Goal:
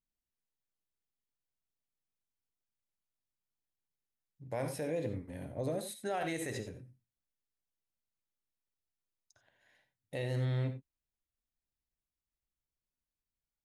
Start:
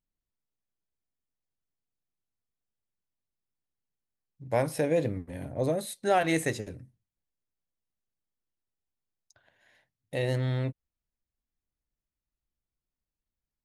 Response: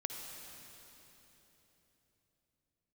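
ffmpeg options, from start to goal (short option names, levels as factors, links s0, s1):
-filter_complex "[1:a]atrim=start_sample=2205,atrim=end_sample=4410[s0];[0:a][s0]afir=irnorm=-1:irlink=0,alimiter=limit=0.0708:level=0:latency=1:release=62,volume=0.631"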